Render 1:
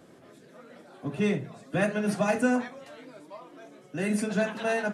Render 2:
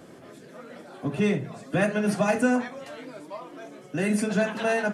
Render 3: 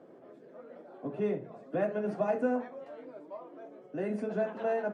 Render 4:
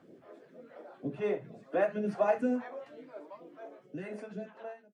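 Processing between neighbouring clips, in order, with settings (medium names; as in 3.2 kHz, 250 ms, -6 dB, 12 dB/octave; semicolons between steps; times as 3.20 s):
in parallel at +0.5 dB: compression, threshold -33 dBFS, peak gain reduction 13 dB; on the sum: band-stop 3.8 kHz, Q 26
band-pass filter 500 Hz, Q 1.1; trim -3.5 dB
fade out at the end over 1.36 s; phase shifter stages 2, 2.1 Hz, lowest notch 120–1100 Hz; trim +3.5 dB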